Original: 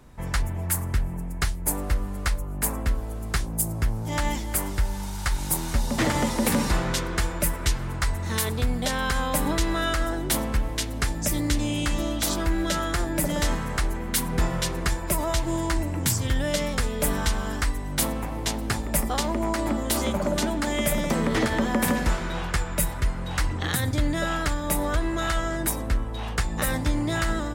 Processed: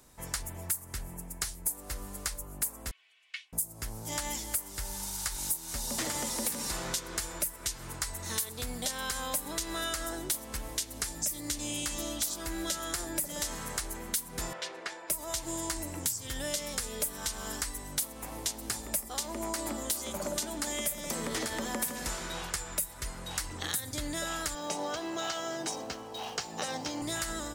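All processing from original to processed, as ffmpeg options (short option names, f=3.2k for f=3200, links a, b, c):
-filter_complex "[0:a]asettb=1/sr,asplit=3[a][b][c];[a]atrim=end=2.914[d];[b]atrim=start=2.91:end=3.53,asetpts=PTS-STARTPTS,afade=t=in:d=0.004:c=qsin,afade=t=out:st=0.616:d=0.004:c=qsin,asuperpass=centerf=2600:order=4:qfactor=2.3,aecho=1:1:2.7:0.68,atrim=end_sample=27342[e];[c]atrim=start=3.526[f];[d][e]acrossfade=d=0.004:c1=hsin:c2=qsin[g];[g][f]acrossfade=d=0.004:c1=qsin:c2=hsin,asettb=1/sr,asplit=3[h][i][j];[h]atrim=end=14.534[k];[i]atrim=start=14.53:end=15.1,asetpts=PTS-STARTPTS,afade=t=in:d=0.004:c=qsin,afade=t=out:st=0.566:d=0.004:c=qsin,highpass=460,lowpass=2.7k,equalizer=f=1.1k:w=3.3:g=-5[l];[j]atrim=start=15.096[m];[k][l]acrossfade=d=0.004:c1=hsin:c2=qsin[n];[n][m]acrossfade=d=0.004:c1=qsin:c2=hsin,asettb=1/sr,asplit=3[o][p][q];[o]atrim=end=24.554[r];[p]atrim=start=24.55:end=27.02,asetpts=PTS-STARTPTS,afade=t=in:d=0.004:c=qsin,afade=t=out:st=2.466:d=0.004:c=qsin,highpass=f=100:w=0.5412,highpass=f=100:w=1.3066,equalizer=f=100:t=q:w=4:g=-7,equalizer=f=440:t=q:w=4:g=6,equalizer=f=770:t=q:w=4:g=9,equalizer=f=1.9k:t=q:w=4:g=-4,equalizer=f=3.2k:t=q:w=4:g=7,equalizer=f=5.9k:t=q:w=4:g=4,lowpass=f=6.1k:w=0.5412,lowpass=f=6.1k:w=1.3066,aeval=exprs='sgn(val(0))*max(abs(val(0))-0.00237,0)':c=same,bandreject=f=3.5k:w=8.6[s];[q]atrim=start=27.016[t];[r][s]acrossfade=d=0.004:c1=hsin:c2=qsin[u];[u][t]acrossfade=d=0.004:c1=qsin:c2=hsin,bass=f=250:g=-7,treble=f=4k:g=14,acompressor=threshold=-23dB:ratio=6,volume=-7dB"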